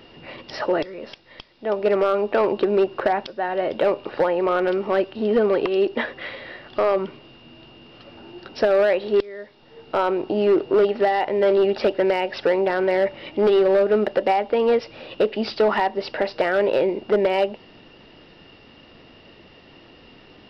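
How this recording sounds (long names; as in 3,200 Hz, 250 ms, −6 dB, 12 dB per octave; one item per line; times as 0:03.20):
background noise floor −49 dBFS
spectral slope −3.5 dB per octave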